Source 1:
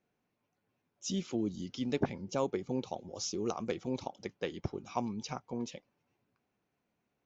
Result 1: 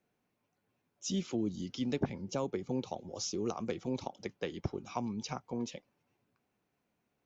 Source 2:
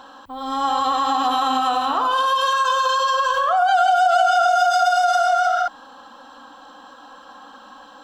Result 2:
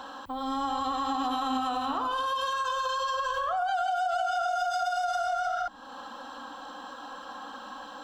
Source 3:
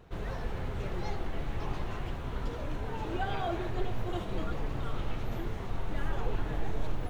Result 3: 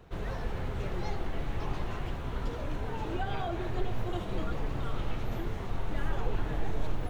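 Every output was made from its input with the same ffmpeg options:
-filter_complex "[0:a]acrossover=split=250[a][b];[b]acompressor=threshold=-35dB:ratio=2.5[c];[a][c]amix=inputs=2:normalize=0,volume=1dB"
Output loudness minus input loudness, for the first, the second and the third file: -0.5, -11.0, +0.5 LU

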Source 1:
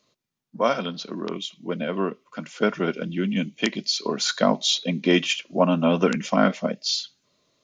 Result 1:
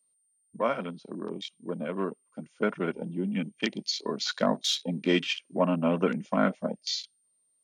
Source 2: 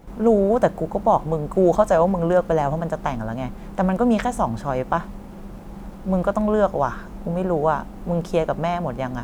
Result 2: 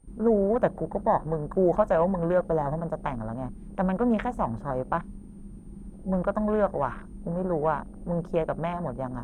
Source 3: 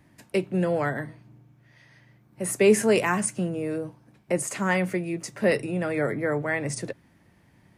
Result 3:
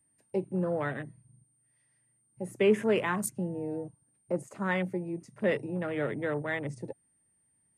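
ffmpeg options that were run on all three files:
-af "aeval=exprs='val(0)+0.00447*sin(2*PI*8900*n/s)':c=same,afwtdn=0.0224,bandreject=f=710:w=20,volume=-5.5dB"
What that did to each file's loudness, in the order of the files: -6.0, -6.0, -6.0 LU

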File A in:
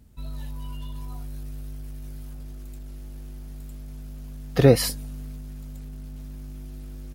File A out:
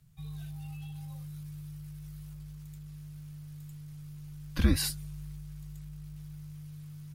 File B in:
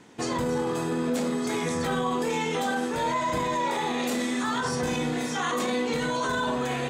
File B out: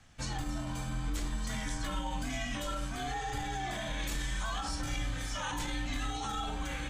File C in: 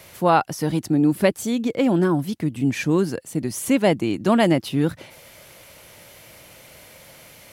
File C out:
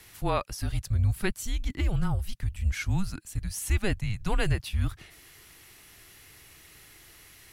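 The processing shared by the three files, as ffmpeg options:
-af "afreqshift=-200,equalizer=f=430:t=o:w=2.1:g=-9,volume=-5dB"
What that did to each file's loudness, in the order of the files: -12.5, -9.0, -9.5 LU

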